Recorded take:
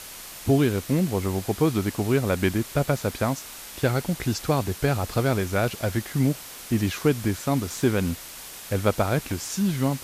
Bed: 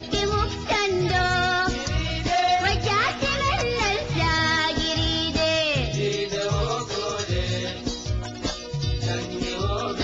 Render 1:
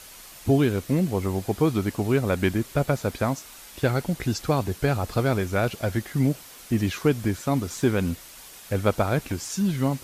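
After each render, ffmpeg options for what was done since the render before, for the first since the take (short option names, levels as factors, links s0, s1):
-af "afftdn=nr=6:nf=-41"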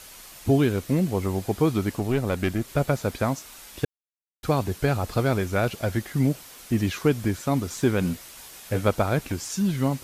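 -filter_complex "[0:a]asettb=1/sr,asplit=3[s0][s1][s2];[s0]atrim=end=1.994[s3];[s1]atrim=start=1.99:end=2.68,asetpts=PTS-STARTPTS,afade=t=in:d=0.004:c=qsin,afade=t=out:st=0.686:d=0.004:c=qsin,aeval=exprs='(tanh(5.62*val(0)+0.45)-tanh(0.45))/5.62':c=same[s4];[s2]atrim=start=2.676[s5];[s3][s4]acrossfade=d=0.004:c1=hsin:c2=qsin[s6];[s6][s5]acrossfade=d=0.004:c1=qsin:c2=hsin,asettb=1/sr,asplit=3[s7][s8][s9];[s7]atrim=end=8.004[s10];[s8]atrim=start=8:end=8.88,asetpts=PTS-STARTPTS,afade=t=in:d=0.004:c=qsin,afade=t=out:st=0.876:d=0.004:c=qsin,asplit=2[s11][s12];[s12]adelay=17,volume=0.501[s13];[s11][s13]amix=inputs=2:normalize=0,atrim=end_sample=38808[s14];[s9]atrim=start=8.876[s15];[s10][s14]acrossfade=d=0.004:c1=hsin:c2=qsin[s16];[s16][s15]acrossfade=d=0.004:c1=qsin:c2=hsin,asplit=3[s17][s18][s19];[s17]atrim=end=3.85,asetpts=PTS-STARTPTS,afade=t=out:st=3.846:d=0.004:c=hsin[s20];[s18]atrim=start=3.85:end=4.43,asetpts=PTS-STARTPTS,volume=0[s21];[s19]atrim=start=4.43,asetpts=PTS-STARTPTS,afade=t=in:d=0.004:c=hsin[s22];[s20][s21][s22]concat=n=3:v=0:a=1"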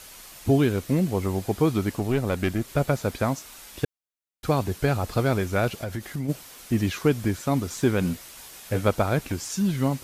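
-filter_complex "[0:a]asplit=3[s0][s1][s2];[s0]afade=t=out:st=5.81:d=0.02[s3];[s1]acompressor=threshold=0.0447:ratio=4:attack=3.2:release=140:knee=1:detection=peak,afade=t=in:st=5.81:d=0.02,afade=t=out:st=6.28:d=0.02[s4];[s2]afade=t=in:st=6.28:d=0.02[s5];[s3][s4][s5]amix=inputs=3:normalize=0"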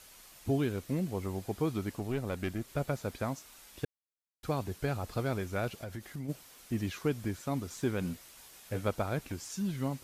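-af "volume=0.316"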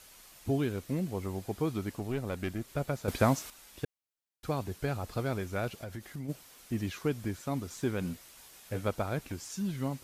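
-filter_complex "[0:a]asplit=3[s0][s1][s2];[s0]atrim=end=3.082[s3];[s1]atrim=start=3.078:end=3.502,asetpts=PTS-STARTPTS,volume=2.99[s4];[s2]atrim=start=3.498[s5];[s3][s4]acrossfade=d=0.004:c1=hsin:c2=hsin[s6];[s6][s5]acrossfade=d=0.004:c1=hsin:c2=hsin"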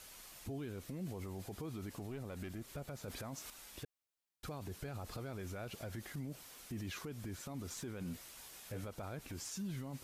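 -af "acompressor=threshold=0.0224:ratio=6,alimiter=level_in=3.76:limit=0.0631:level=0:latency=1:release=27,volume=0.266"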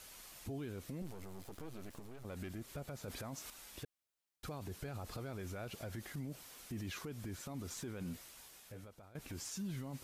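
-filter_complex "[0:a]asettb=1/sr,asplit=3[s0][s1][s2];[s0]atrim=end=1.024[s3];[s1]atrim=start=1.02:end=2.25,asetpts=PTS-STARTPTS,afade=t=in:d=0.004:c=qsin,afade=t=out:st=1.226:d=0.004:c=qsin,aeval=exprs='max(val(0),0)':c=same[s4];[s2]atrim=start=2.246[s5];[s3][s4]acrossfade=d=0.004:c1=hsin:c2=qsin[s6];[s6][s5]acrossfade=d=0.004:c1=qsin:c2=hsin,asplit=2[s7][s8];[s7]atrim=end=9.15,asetpts=PTS-STARTPTS,afade=t=out:st=8.05:d=1.1:silence=0.125893[s9];[s8]atrim=start=9.15,asetpts=PTS-STARTPTS,afade=t=in:d=0.004:c=hsin:silence=0.125893[s10];[s9][s10]concat=n=2:v=0:a=1"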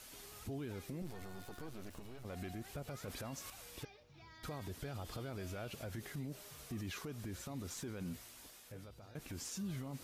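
-filter_complex "[1:a]volume=0.015[s0];[0:a][s0]amix=inputs=2:normalize=0"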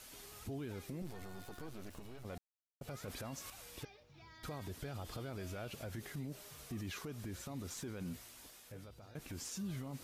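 -filter_complex "[0:a]asplit=3[s0][s1][s2];[s0]atrim=end=2.38,asetpts=PTS-STARTPTS,afade=t=out:st=2.376:d=0.004:c=hsin[s3];[s1]atrim=start=2.38:end=2.81,asetpts=PTS-STARTPTS,volume=0[s4];[s2]atrim=start=2.81,asetpts=PTS-STARTPTS,afade=t=in:d=0.004:c=hsin[s5];[s3][s4][s5]concat=n=3:v=0:a=1"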